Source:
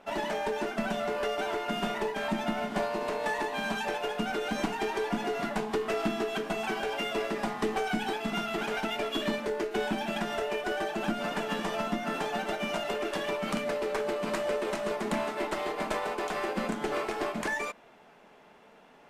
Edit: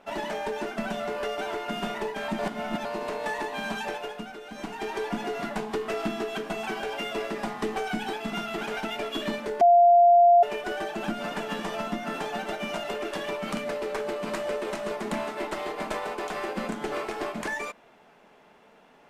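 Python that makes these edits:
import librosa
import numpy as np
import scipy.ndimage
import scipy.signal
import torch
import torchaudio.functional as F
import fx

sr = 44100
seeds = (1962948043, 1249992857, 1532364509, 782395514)

y = fx.edit(x, sr, fx.reverse_span(start_s=2.39, length_s=0.46),
    fx.fade_down_up(start_s=3.86, length_s=1.12, db=-10.0, fade_s=0.47),
    fx.bleep(start_s=9.61, length_s=0.82, hz=696.0, db=-13.0), tone=tone)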